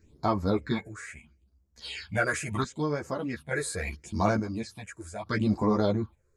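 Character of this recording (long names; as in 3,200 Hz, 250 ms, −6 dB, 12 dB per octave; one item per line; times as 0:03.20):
phaser sweep stages 6, 0.75 Hz, lowest notch 210–3,400 Hz
chopped level 0.57 Hz, depth 60%, duty 50%
a shimmering, thickened sound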